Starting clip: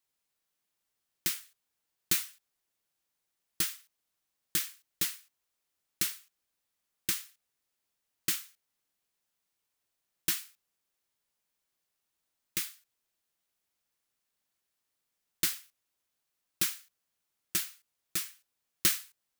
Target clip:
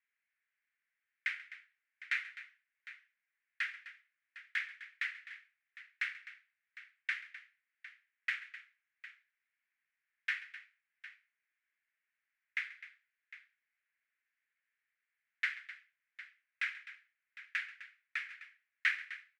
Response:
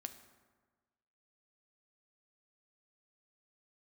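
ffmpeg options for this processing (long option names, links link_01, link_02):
-af "asuperpass=centerf=1900:order=4:qfactor=2.5,aecho=1:1:135|256|756:0.126|0.178|0.158,volume=9dB"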